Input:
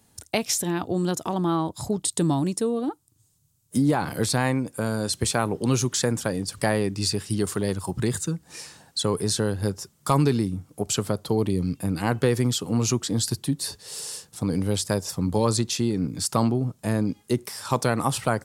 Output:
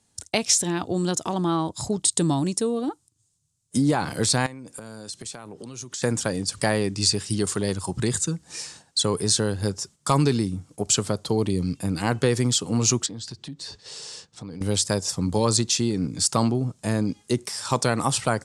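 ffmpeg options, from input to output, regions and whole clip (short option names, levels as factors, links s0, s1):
-filter_complex "[0:a]asettb=1/sr,asplit=3[s0][s1][s2];[s0]atrim=end=4.464[s3];[s1]atrim=start=4.46:end=6.02,asetpts=PTS-STARTPTS,afade=t=in:d=0.004:c=qsin,afade=t=out:st=1.556:d=0.004:c=qsin,highpass=98,acompressor=threshold=0.0178:ratio=12:attack=3.2:release=140:knee=1:detection=peak[s4];[s2]atrim=start=6.016[s5];[s3][s4]acrossfade=d=0.004:c1=hsin:c2=qsin[s6];[s6][s5]acrossfade=d=0.004:c1=qsin:c2=hsin,asettb=1/sr,asplit=3[s7][s8][s9];[s7]atrim=end=13.064[s10];[s8]atrim=start=13.06:end=14.61,asetpts=PTS-STARTPTS,afade=t=in:d=0.004:c=qsin,afade=t=out:st=1.546:d=0.004:c=qsin,lowpass=4500,acompressor=threshold=0.0112:ratio=2.5:attack=3.2:release=140:knee=1:detection=peak[s11];[s9]atrim=start=14.606[s12];[s10][s11]acrossfade=d=0.004:c1=hsin:c2=qsin[s13];[s13][s12]acrossfade=d=0.004:c1=qsin:c2=hsin,lowpass=f=8600:w=0.5412,lowpass=f=8600:w=1.3066,agate=range=0.398:threshold=0.00355:ratio=16:detection=peak,highshelf=f=4600:g=10"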